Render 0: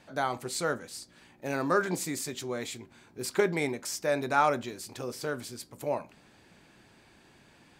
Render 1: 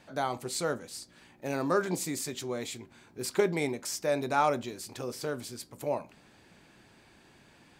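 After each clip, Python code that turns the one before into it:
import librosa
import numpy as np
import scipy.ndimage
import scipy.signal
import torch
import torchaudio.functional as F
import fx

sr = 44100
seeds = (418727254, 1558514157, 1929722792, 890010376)

y = fx.dynamic_eq(x, sr, hz=1600.0, q=1.6, threshold_db=-46.0, ratio=4.0, max_db=-5)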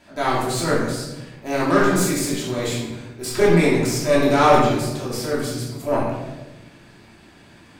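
y = fx.cheby_harmonics(x, sr, harmonics=(6, 7), levels_db=(-23, -26), full_scale_db=-12.5)
y = fx.transient(y, sr, attack_db=-6, sustain_db=5)
y = fx.room_shoebox(y, sr, seeds[0], volume_m3=450.0, walls='mixed', distance_m=2.9)
y = F.gain(torch.from_numpy(y), 6.0).numpy()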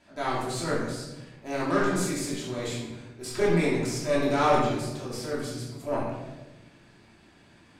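y = scipy.signal.sosfilt(scipy.signal.butter(2, 11000.0, 'lowpass', fs=sr, output='sos'), x)
y = F.gain(torch.from_numpy(y), -8.0).numpy()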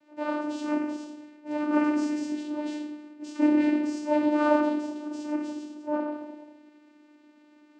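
y = fx.vocoder(x, sr, bands=8, carrier='saw', carrier_hz=299.0)
y = F.gain(torch.from_numpy(y), 1.5).numpy()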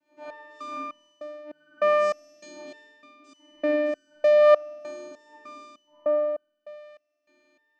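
y = fx.room_flutter(x, sr, wall_m=4.3, rt60_s=0.96)
y = fx.resonator_held(y, sr, hz=3.3, low_hz=89.0, high_hz=1500.0)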